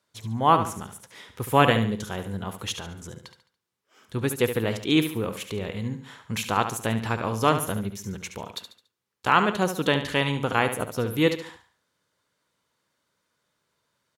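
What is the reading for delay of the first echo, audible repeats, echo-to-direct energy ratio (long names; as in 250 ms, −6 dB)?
71 ms, 4, −9.0 dB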